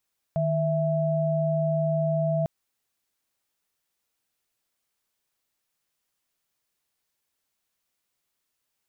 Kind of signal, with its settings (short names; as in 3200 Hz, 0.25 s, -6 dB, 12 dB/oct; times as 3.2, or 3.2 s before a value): chord D#3/E5 sine, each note -24.5 dBFS 2.10 s